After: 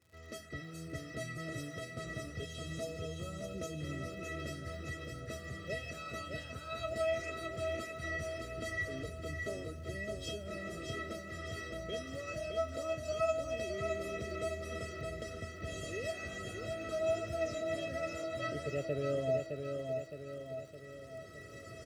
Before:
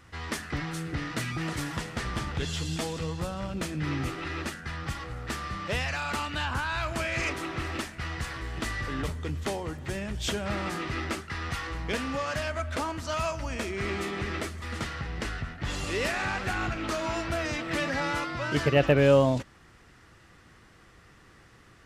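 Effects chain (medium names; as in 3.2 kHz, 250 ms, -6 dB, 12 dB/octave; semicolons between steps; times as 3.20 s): recorder AGC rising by 9 dB/s; high-pass 87 Hz 24 dB/octave; resonant low shelf 610 Hz +11.5 dB, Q 3; feedback comb 650 Hz, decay 0.22 s, harmonics all, mix 100%; crackle 110 per s -53 dBFS; feedback delay 614 ms, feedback 53%, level -5 dB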